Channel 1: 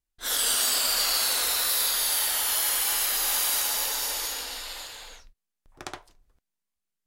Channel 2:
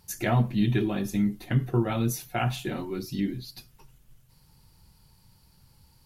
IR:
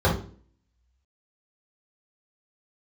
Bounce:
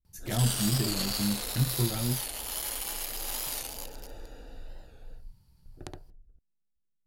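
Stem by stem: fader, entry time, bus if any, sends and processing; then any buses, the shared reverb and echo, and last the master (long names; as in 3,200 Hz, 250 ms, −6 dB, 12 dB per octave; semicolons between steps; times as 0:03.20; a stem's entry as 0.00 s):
−3.5 dB, 0.00 s, no send, adaptive Wiener filter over 41 samples
−11.0 dB, 0.05 s, muted 0:02.29–0:03.47, no send, no processing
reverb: not used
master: low-shelf EQ 200 Hz +12 dB; wow of a warped record 45 rpm, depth 100 cents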